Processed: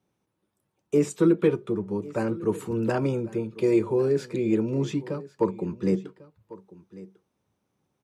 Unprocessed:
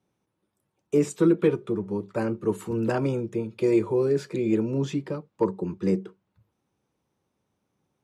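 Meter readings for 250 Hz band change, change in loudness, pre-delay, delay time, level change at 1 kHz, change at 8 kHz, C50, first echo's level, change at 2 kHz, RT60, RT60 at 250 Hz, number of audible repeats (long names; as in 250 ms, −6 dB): 0.0 dB, 0.0 dB, no reverb audible, 1,097 ms, 0.0 dB, 0.0 dB, no reverb audible, −19.0 dB, 0.0 dB, no reverb audible, no reverb audible, 1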